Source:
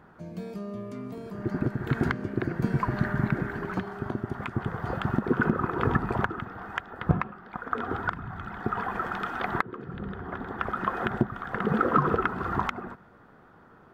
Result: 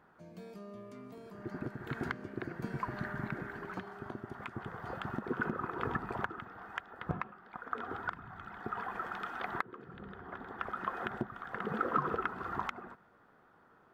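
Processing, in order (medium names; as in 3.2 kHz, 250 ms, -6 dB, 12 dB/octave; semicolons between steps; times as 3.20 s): bass shelf 280 Hz -8.5 dB; trim -7.5 dB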